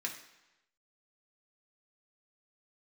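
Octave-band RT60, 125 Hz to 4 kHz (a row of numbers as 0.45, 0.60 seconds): 0.95, 0.90, 0.95, 1.0, 1.0, 0.95 seconds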